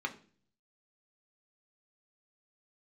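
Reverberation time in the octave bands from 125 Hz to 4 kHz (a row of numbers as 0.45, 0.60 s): 0.85, 0.70, 0.50, 0.35, 0.40, 0.45 s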